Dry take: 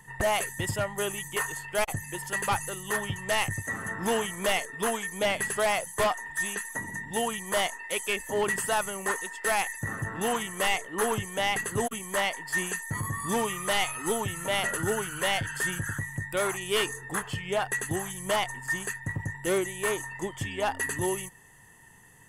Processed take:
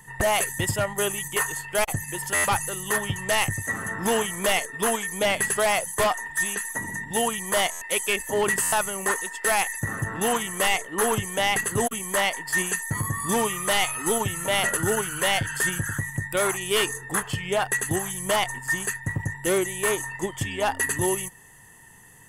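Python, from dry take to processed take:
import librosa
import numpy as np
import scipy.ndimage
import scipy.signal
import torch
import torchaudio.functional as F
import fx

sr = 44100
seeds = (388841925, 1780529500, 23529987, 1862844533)

p1 = fx.high_shelf(x, sr, hz=7300.0, db=5.0)
p2 = fx.level_steps(p1, sr, step_db=10)
p3 = p1 + (p2 * 10.0 ** (-1.0 / 20.0))
y = fx.buffer_glitch(p3, sr, at_s=(2.34, 7.71, 8.62), block=512, repeats=8)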